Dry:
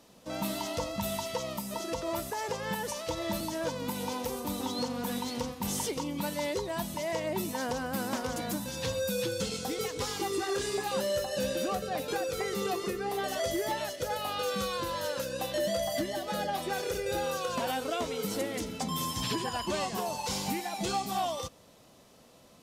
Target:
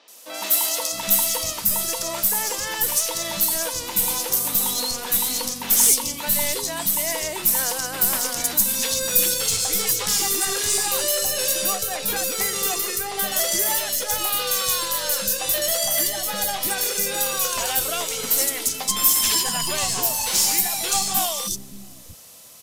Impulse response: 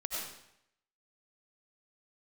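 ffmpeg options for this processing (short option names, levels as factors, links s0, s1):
-filter_complex "[0:a]crystalizer=i=9.5:c=0,aeval=exprs='0.794*(cos(1*acos(clip(val(0)/0.794,-1,1)))-cos(1*PI/2))+0.0501*(cos(6*acos(clip(val(0)/0.794,-1,1)))-cos(6*PI/2))':c=same,acrossover=split=290|3900[s0][s1][s2];[s2]adelay=80[s3];[s0]adelay=660[s4];[s4][s1][s3]amix=inputs=3:normalize=0"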